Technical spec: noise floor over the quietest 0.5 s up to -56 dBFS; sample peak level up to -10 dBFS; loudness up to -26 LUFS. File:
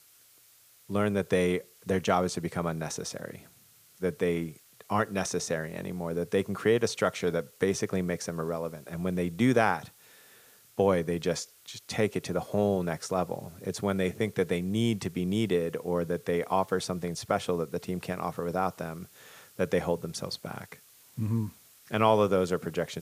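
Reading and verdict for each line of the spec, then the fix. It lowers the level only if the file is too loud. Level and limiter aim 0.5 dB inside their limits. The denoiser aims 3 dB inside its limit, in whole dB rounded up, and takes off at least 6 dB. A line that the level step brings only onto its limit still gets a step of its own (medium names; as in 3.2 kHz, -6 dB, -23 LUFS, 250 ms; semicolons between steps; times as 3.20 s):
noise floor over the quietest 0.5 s -59 dBFS: pass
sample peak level -9.5 dBFS: fail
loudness -30.0 LUFS: pass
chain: peak limiter -10.5 dBFS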